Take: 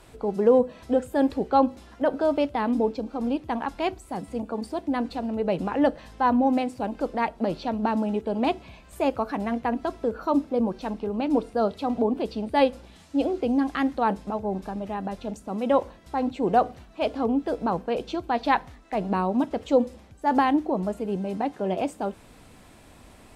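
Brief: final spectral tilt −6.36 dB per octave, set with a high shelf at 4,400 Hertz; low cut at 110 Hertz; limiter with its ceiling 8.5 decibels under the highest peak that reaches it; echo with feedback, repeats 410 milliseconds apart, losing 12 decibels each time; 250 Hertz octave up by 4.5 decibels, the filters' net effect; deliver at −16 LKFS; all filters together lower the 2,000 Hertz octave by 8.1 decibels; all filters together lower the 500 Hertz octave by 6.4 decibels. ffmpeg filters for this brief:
ffmpeg -i in.wav -af "highpass=110,equalizer=frequency=250:width_type=o:gain=7.5,equalizer=frequency=500:width_type=o:gain=-9,equalizer=frequency=2000:width_type=o:gain=-8.5,highshelf=frequency=4400:gain=-8.5,alimiter=limit=-18dB:level=0:latency=1,aecho=1:1:410|820|1230:0.251|0.0628|0.0157,volume=11.5dB" out.wav

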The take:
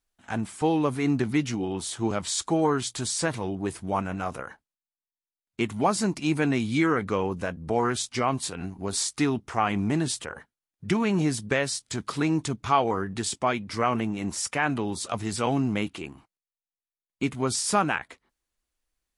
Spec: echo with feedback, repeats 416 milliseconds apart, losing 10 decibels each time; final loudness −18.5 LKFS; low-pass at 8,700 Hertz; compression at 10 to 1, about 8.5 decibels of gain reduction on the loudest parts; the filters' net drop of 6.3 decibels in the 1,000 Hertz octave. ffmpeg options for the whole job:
ffmpeg -i in.wav -af "lowpass=8700,equalizer=frequency=1000:width_type=o:gain=-8.5,acompressor=threshold=-29dB:ratio=10,aecho=1:1:416|832|1248|1664:0.316|0.101|0.0324|0.0104,volume=15.5dB" out.wav

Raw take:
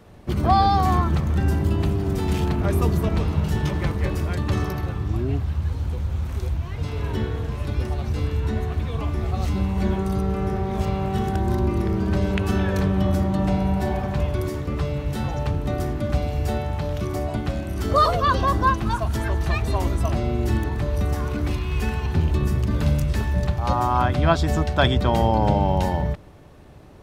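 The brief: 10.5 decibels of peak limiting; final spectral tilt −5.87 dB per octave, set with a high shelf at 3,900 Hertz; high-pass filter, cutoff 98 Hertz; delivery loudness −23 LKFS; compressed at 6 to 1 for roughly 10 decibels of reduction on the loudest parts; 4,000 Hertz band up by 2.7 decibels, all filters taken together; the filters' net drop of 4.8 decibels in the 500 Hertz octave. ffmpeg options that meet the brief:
ffmpeg -i in.wav -af "highpass=98,equalizer=frequency=500:width_type=o:gain=-6.5,highshelf=frequency=3900:gain=-8,equalizer=frequency=4000:width_type=o:gain=8,acompressor=threshold=-26dB:ratio=6,volume=10dB,alimiter=limit=-13.5dB:level=0:latency=1" out.wav

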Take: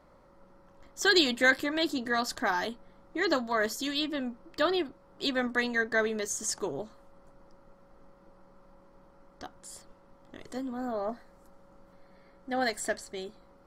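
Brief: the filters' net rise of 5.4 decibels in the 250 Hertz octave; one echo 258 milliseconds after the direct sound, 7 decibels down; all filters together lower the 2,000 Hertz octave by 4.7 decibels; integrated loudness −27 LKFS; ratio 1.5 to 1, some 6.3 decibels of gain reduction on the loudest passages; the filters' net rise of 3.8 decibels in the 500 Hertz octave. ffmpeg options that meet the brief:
ffmpeg -i in.wav -af "equalizer=frequency=250:width_type=o:gain=5.5,equalizer=frequency=500:width_type=o:gain=3.5,equalizer=frequency=2000:width_type=o:gain=-6.5,acompressor=threshold=-35dB:ratio=1.5,aecho=1:1:258:0.447,volume=5.5dB" out.wav

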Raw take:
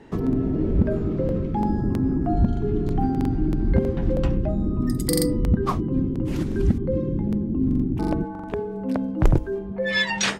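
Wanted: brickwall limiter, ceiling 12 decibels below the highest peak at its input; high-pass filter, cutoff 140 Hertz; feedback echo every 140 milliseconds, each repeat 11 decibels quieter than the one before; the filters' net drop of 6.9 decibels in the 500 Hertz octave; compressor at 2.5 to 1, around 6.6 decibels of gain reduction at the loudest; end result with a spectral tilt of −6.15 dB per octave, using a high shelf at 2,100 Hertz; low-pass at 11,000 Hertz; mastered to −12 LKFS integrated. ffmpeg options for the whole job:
ffmpeg -i in.wav -af "highpass=140,lowpass=11000,equalizer=frequency=500:width_type=o:gain=-9,highshelf=frequency=2100:gain=-3,acompressor=threshold=-28dB:ratio=2.5,alimiter=level_in=4dB:limit=-24dB:level=0:latency=1,volume=-4dB,aecho=1:1:140|280|420:0.282|0.0789|0.0221,volume=23.5dB" out.wav

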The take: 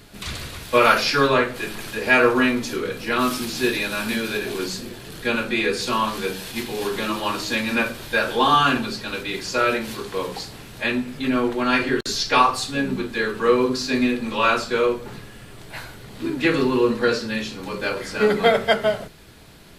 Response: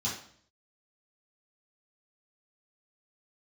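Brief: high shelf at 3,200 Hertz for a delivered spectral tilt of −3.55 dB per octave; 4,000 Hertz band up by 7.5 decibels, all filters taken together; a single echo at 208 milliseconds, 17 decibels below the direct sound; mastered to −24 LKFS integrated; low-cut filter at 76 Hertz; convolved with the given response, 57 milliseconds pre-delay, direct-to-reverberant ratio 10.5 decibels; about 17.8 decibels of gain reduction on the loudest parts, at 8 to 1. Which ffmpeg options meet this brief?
-filter_complex "[0:a]highpass=76,highshelf=frequency=3200:gain=8,equalizer=frequency=4000:width_type=o:gain=3.5,acompressor=threshold=-29dB:ratio=8,aecho=1:1:208:0.141,asplit=2[link_01][link_02];[1:a]atrim=start_sample=2205,adelay=57[link_03];[link_02][link_03]afir=irnorm=-1:irlink=0,volume=-16dB[link_04];[link_01][link_04]amix=inputs=2:normalize=0,volume=6.5dB"

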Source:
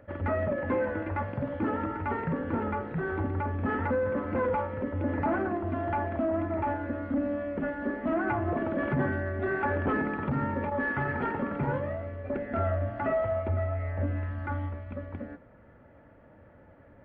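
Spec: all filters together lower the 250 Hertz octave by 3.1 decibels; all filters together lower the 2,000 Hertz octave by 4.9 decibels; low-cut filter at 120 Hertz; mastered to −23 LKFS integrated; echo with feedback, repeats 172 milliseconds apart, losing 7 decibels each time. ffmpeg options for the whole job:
ffmpeg -i in.wav -af "highpass=120,equalizer=frequency=250:width_type=o:gain=-3.5,equalizer=frequency=2000:width_type=o:gain=-6.5,aecho=1:1:172|344|516|688|860:0.447|0.201|0.0905|0.0407|0.0183,volume=9dB" out.wav

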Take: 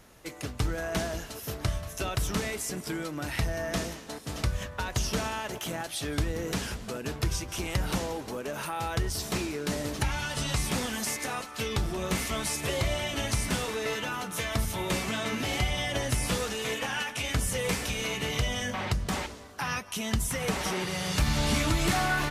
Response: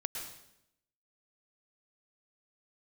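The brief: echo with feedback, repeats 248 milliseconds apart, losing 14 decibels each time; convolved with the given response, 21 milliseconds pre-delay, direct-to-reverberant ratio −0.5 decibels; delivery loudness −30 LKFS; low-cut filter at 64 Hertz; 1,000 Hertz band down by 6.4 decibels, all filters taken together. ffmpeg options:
-filter_complex "[0:a]highpass=64,equalizer=frequency=1000:width_type=o:gain=-9,aecho=1:1:248|496:0.2|0.0399,asplit=2[link_01][link_02];[1:a]atrim=start_sample=2205,adelay=21[link_03];[link_02][link_03]afir=irnorm=-1:irlink=0,volume=-0.5dB[link_04];[link_01][link_04]amix=inputs=2:normalize=0,volume=-1.5dB"

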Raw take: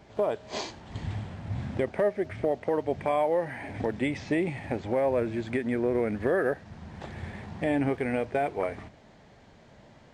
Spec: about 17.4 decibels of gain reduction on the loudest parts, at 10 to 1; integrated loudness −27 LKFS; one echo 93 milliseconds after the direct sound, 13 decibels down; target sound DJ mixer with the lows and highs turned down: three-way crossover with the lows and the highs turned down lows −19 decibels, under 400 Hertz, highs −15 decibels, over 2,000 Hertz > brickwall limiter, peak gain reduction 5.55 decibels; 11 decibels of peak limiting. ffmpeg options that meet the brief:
ffmpeg -i in.wav -filter_complex "[0:a]acompressor=threshold=-40dB:ratio=10,alimiter=level_in=14dB:limit=-24dB:level=0:latency=1,volume=-14dB,acrossover=split=400 2000:gain=0.112 1 0.178[link_01][link_02][link_03];[link_01][link_02][link_03]amix=inputs=3:normalize=0,aecho=1:1:93:0.224,volume=27.5dB,alimiter=limit=-16.5dB:level=0:latency=1" out.wav

